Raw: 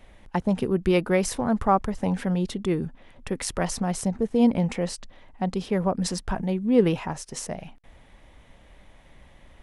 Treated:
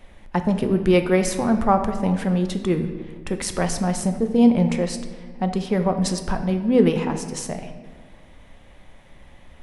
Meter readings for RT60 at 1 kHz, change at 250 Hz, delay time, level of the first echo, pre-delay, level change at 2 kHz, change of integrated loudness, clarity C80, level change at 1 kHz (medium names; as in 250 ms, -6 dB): 1.4 s, +4.5 dB, no echo, no echo, 4 ms, +3.5 dB, +4.0 dB, 10.5 dB, +3.0 dB